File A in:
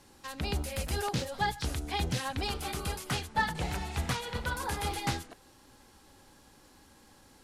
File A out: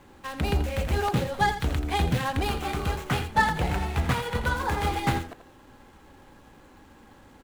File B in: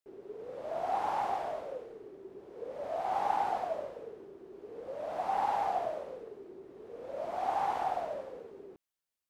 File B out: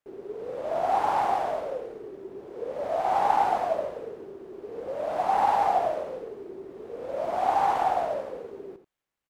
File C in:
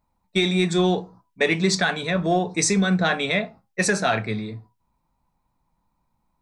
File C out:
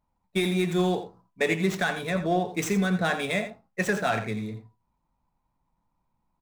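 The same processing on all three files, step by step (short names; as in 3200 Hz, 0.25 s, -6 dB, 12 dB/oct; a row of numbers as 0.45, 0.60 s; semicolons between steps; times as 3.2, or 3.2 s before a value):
median filter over 9 samples; on a send: echo 84 ms -11 dB; on the sum: match loudness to -27 LUFS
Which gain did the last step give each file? +7.5, +8.0, -4.0 dB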